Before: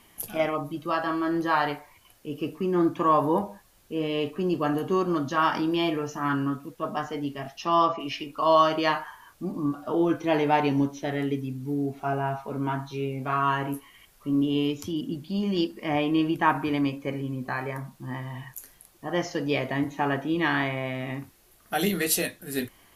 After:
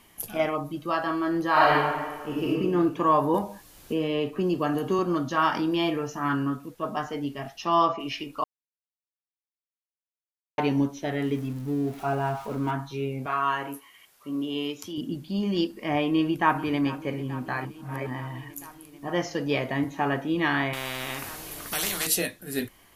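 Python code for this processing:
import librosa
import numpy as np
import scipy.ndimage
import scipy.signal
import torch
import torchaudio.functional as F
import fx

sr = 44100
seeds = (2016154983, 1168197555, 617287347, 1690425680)

y = fx.reverb_throw(x, sr, start_s=1.5, length_s=0.98, rt60_s=1.5, drr_db=-5.5)
y = fx.band_squash(y, sr, depth_pct=70, at=(3.34, 4.99))
y = fx.zero_step(y, sr, step_db=-41.5, at=(11.24, 12.71))
y = fx.highpass(y, sr, hz=500.0, slope=6, at=(13.26, 14.98))
y = fx.echo_throw(y, sr, start_s=16.07, length_s=0.87, ms=440, feedback_pct=80, wet_db=-17.5)
y = fx.spectral_comp(y, sr, ratio=4.0, at=(20.73, 22.07))
y = fx.edit(y, sr, fx.silence(start_s=8.44, length_s=2.14),
    fx.reverse_span(start_s=17.65, length_s=0.42), tone=tone)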